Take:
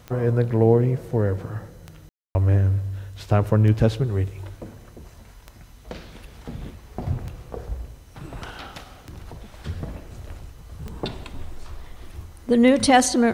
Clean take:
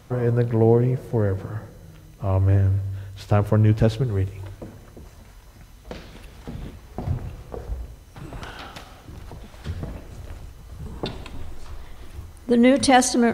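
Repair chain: de-click; room tone fill 2.09–2.35 s

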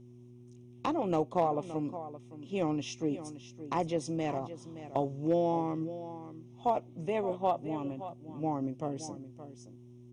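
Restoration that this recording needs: clip repair -19 dBFS; de-hum 121.7 Hz, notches 3; inverse comb 570 ms -13 dB

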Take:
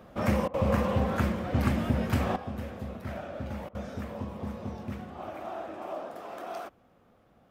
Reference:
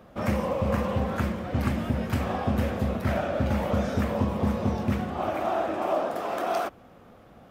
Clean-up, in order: interpolate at 0.48/3.69 s, 57 ms; trim 0 dB, from 2.36 s +11 dB

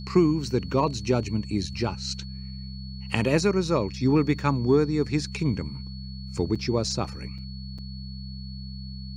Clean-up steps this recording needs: de-hum 65.5 Hz, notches 3; band-stop 4.4 kHz, Q 30; interpolate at 6.55/7.38/7.78 s, 5.6 ms

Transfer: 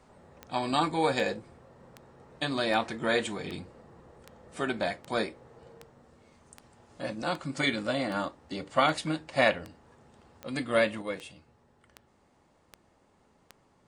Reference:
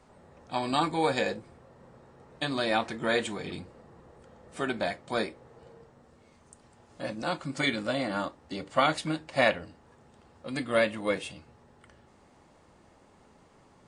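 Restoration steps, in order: de-click; trim 0 dB, from 11.02 s +6.5 dB

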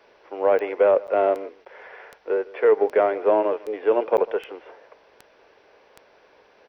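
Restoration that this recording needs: de-click; interpolate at 1.07/1.65/4.17 s, 9 ms; inverse comb 149 ms -21 dB

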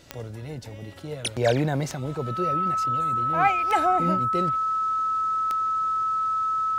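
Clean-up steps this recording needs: de-click; band-stop 1.3 kHz, Q 30

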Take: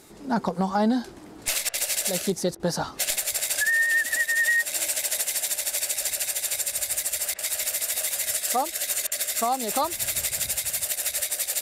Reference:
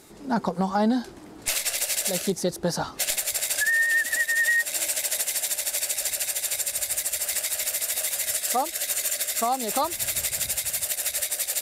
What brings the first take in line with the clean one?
clip repair -13.5 dBFS; interpolate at 1.69/2.55/7.34/9.07 s, 46 ms

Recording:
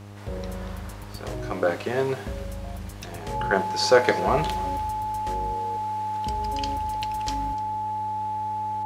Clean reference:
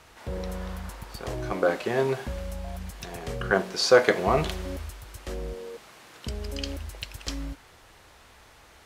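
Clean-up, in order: de-hum 101.4 Hz, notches 12; band-stop 860 Hz, Q 30; inverse comb 299 ms -20 dB

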